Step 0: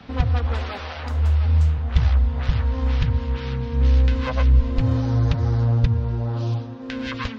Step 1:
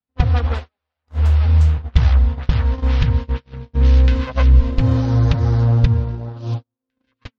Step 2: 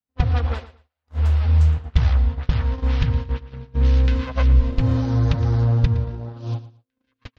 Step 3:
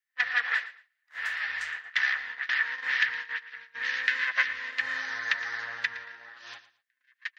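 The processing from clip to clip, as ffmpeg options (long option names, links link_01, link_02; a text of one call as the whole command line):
ffmpeg -i in.wav -af "agate=range=-54dB:threshold=-22dB:ratio=16:detection=peak,volume=4.5dB" out.wav
ffmpeg -i in.wav -af "aecho=1:1:114|228:0.168|0.0369,volume=-3.5dB" out.wav
ffmpeg -i in.wav -af "highpass=frequency=1800:width_type=q:width=11" out.wav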